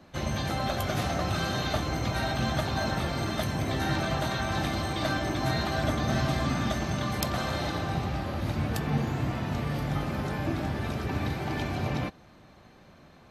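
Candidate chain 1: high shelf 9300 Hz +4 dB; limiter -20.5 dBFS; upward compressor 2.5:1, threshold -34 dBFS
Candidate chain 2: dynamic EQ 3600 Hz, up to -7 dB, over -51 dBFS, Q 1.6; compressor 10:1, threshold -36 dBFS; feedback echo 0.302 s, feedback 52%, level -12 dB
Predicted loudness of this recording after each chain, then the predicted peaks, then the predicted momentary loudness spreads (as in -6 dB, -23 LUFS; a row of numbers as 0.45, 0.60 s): -31.0, -40.0 LUFS; -20.5, -23.5 dBFS; 3, 1 LU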